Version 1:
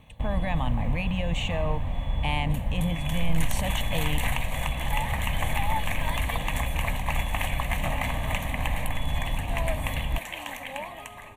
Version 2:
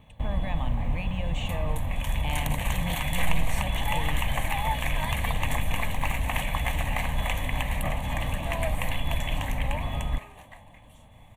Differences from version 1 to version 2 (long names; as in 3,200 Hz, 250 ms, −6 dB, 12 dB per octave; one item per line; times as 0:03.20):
speech −5.5 dB
second sound: entry −1.05 s